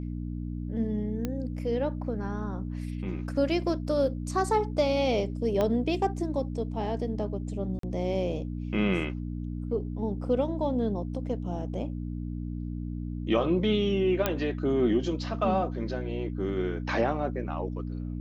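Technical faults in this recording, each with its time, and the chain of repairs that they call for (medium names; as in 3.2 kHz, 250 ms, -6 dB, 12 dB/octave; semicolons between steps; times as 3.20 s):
hum 60 Hz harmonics 5 -34 dBFS
1.25 s: pop -17 dBFS
5.61 s: pop -15 dBFS
7.79–7.83 s: dropout 43 ms
14.26 s: pop -10 dBFS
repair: de-click; de-hum 60 Hz, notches 5; interpolate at 7.79 s, 43 ms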